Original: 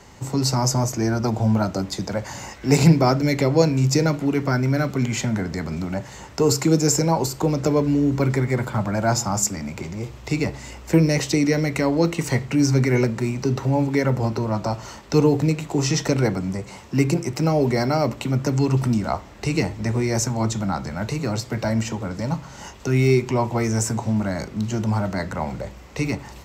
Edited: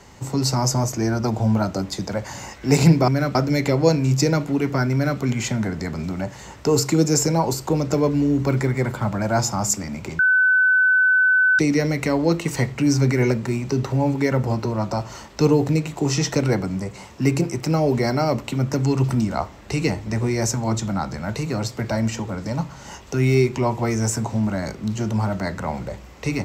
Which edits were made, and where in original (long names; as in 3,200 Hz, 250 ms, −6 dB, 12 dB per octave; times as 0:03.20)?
0:04.66–0:04.93: duplicate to 0:03.08
0:09.92–0:11.32: beep over 1,510 Hz −13 dBFS